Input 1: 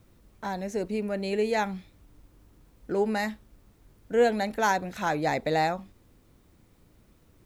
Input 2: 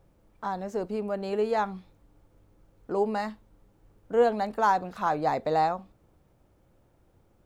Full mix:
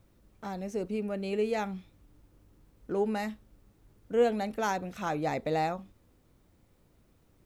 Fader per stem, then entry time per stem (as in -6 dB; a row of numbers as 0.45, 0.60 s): -6.0, -8.5 dB; 0.00, 0.00 s